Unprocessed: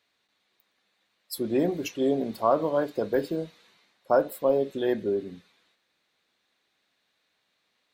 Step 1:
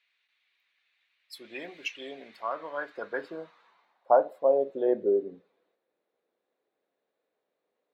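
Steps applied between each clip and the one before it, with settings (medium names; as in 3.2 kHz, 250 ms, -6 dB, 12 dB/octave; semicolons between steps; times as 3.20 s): gain riding 0.5 s; band-pass sweep 2.4 kHz -> 470 Hz, 2.07–5.10 s; trim +5 dB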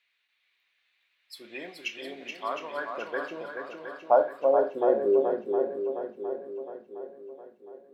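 shuffle delay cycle 712 ms, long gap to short 1.5:1, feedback 46%, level -5.5 dB; on a send at -10.5 dB: reverberation RT60 0.35 s, pre-delay 21 ms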